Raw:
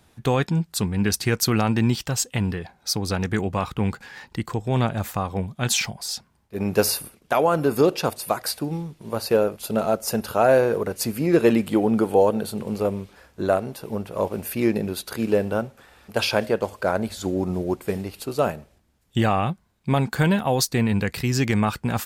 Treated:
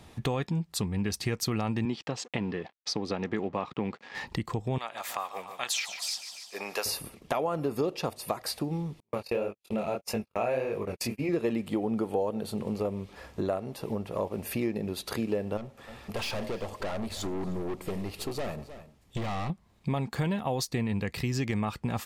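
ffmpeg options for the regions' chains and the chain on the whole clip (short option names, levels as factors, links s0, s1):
-filter_complex "[0:a]asettb=1/sr,asplit=3[s0][s1][s2];[s0]atrim=end=1.854[s3];[s1]atrim=start=1.85:end=4.15,asetpts=PTS-STARTPTS,afade=t=in:d=0.004:c=qsin,afade=t=out:st=2.296:d=0.004:c=qsin,lowshelf=f=430:g=7,aeval=exprs='sgn(val(0))*max(abs(val(0))-0.00596,0)':c=same,highpass=280,lowpass=4400[s4];[s2]atrim=start=4.146[s5];[s3][s4]acrossfade=d=0.004:c1=hsin:c2=qsin[s6];[s6][s5]acrossfade=d=0.004:c1=qsin:c2=hsin,asettb=1/sr,asplit=3[s7][s8][s9];[s7]atrim=end=4.784[s10];[s8]atrim=start=4.78:end=6.86,asetpts=PTS-STARTPTS,afade=t=in:d=0.004:c=qsin,afade=t=out:st=2.076:d=0.004:c=qsin,highpass=980,aecho=1:1:146|292|438|584|730:0.2|0.102|0.0519|0.0265|0.0135,atrim=end_sample=91728[s11];[s9]atrim=start=6.856[s12];[s10][s11]acrossfade=d=0.004:c1=hsin:c2=qsin[s13];[s13][s12]acrossfade=d=0.004:c1=qsin:c2=hsin,asettb=1/sr,asplit=3[s14][s15][s16];[s14]atrim=end=9.004[s17];[s15]atrim=start=9:end=11.29,asetpts=PTS-STARTPTS,afade=t=in:d=0.004:c=qsin,afade=t=out:st=2.286:d=0.004:c=qsin,agate=range=0.00316:threshold=0.0355:ratio=16:release=100:detection=peak,equalizer=f=2400:t=o:w=0.45:g=11,flanger=delay=19:depth=6.4:speed=1.7[s18];[s16]atrim=start=11.286[s19];[s17][s18]acrossfade=d=0.004:c1=hsin:c2=qsin[s20];[s20][s19]acrossfade=d=0.004:c1=qsin:c2=hsin,asettb=1/sr,asplit=3[s21][s22][s23];[s21]atrim=end=15.574[s24];[s22]atrim=start=15.57:end=19.5,asetpts=PTS-STARTPTS,afade=t=in:d=0.004:c=qsin,afade=t=out:st=3.926:d=0.004:c=qsin,aeval=exprs='(tanh(31.6*val(0)+0.45)-tanh(0.45))/31.6':c=same,aecho=1:1:307:0.0944,atrim=end_sample=173313[s25];[s23]atrim=start=19.496[s26];[s24][s25]acrossfade=d=0.004:c1=hsin:c2=qsin[s27];[s27][s26]acrossfade=d=0.004:c1=qsin:c2=hsin,highshelf=f=7700:g=-8.5,bandreject=f=1500:w=6.6,acompressor=threshold=0.0112:ratio=3,volume=2.11"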